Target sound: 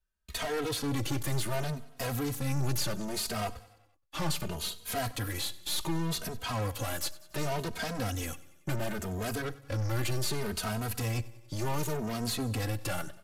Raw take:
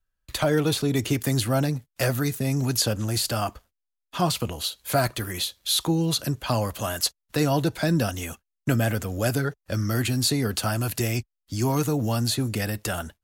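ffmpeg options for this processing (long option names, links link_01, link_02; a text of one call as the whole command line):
ffmpeg -i in.wav -filter_complex "[0:a]aeval=exprs='(tanh(39.8*val(0)+0.75)-tanh(0.75))/39.8':channel_layout=same,aresample=32000,aresample=44100,asplit=2[link_01][link_02];[link_02]aecho=0:1:94|188|282|376|470:0.1|0.06|0.036|0.0216|0.013[link_03];[link_01][link_03]amix=inputs=2:normalize=0,asplit=2[link_04][link_05];[link_05]adelay=2.9,afreqshift=0.68[link_06];[link_04][link_06]amix=inputs=2:normalize=1,volume=4.5dB" out.wav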